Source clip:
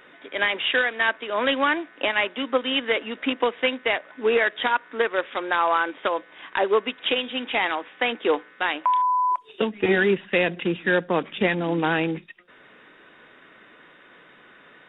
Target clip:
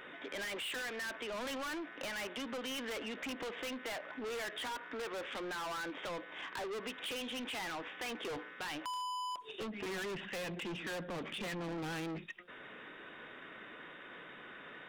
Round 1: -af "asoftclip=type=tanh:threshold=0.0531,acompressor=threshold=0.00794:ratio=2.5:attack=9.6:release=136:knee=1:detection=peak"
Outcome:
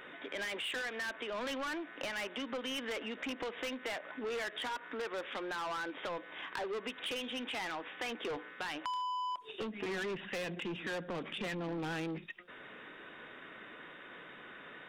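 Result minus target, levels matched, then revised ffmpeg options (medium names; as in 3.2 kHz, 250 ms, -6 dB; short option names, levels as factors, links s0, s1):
saturation: distortion -4 dB
-af "asoftclip=type=tanh:threshold=0.02,acompressor=threshold=0.00794:ratio=2.5:attack=9.6:release=136:knee=1:detection=peak"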